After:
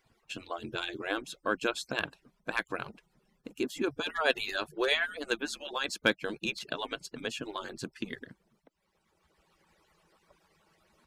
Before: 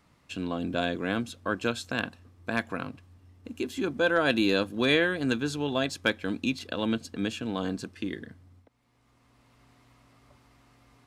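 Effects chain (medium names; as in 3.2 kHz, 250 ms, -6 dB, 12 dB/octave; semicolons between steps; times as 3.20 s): harmonic-percussive separation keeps percussive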